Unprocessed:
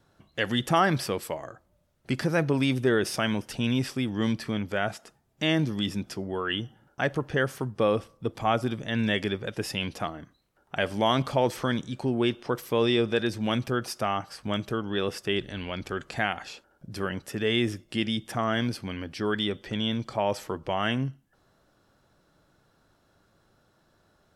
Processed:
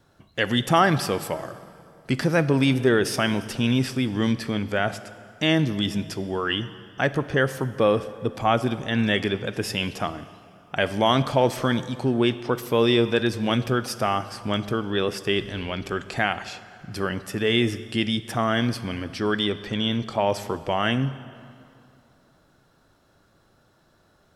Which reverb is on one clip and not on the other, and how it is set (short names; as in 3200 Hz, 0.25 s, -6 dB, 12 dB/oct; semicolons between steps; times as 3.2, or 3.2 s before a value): plate-style reverb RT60 2.6 s, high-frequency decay 0.75×, DRR 13.5 dB; gain +4 dB